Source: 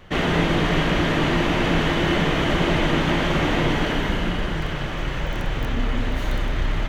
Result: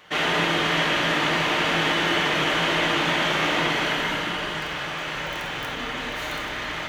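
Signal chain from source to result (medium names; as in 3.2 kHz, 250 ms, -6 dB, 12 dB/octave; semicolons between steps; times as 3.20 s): high-pass 1.1 kHz 6 dB/octave; on a send: reverberation RT60 1.0 s, pre-delay 7 ms, DRR 2.5 dB; on the sum: trim +2.5 dB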